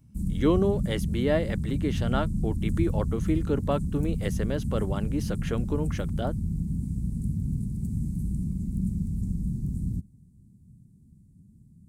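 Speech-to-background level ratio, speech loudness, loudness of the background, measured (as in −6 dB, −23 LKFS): 0.5 dB, −30.0 LKFS, −30.5 LKFS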